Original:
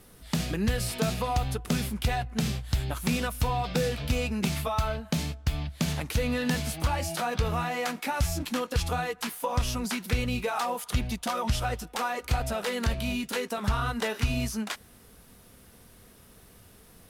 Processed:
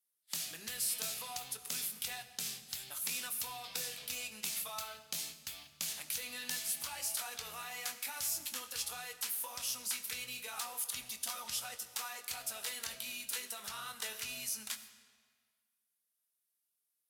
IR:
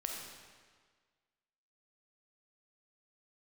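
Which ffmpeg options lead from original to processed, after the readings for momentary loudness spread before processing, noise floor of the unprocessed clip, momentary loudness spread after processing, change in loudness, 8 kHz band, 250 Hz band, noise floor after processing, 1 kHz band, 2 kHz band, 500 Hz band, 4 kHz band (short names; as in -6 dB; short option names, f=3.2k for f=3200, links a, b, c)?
3 LU, -54 dBFS, 6 LU, -8.5 dB, +1.0 dB, -28.0 dB, -84 dBFS, -16.5 dB, -10.5 dB, -22.0 dB, -5.0 dB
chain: -filter_complex "[0:a]aderivative,agate=range=-28dB:threshold=-52dB:ratio=16:detection=peak,asplit=2[a][b];[1:a]atrim=start_sample=2205,lowshelf=f=440:g=9,adelay=23[c];[b][c]afir=irnorm=-1:irlink=0,volume=-10dB[d];[a][d]amix=inputs=2:normalize=0"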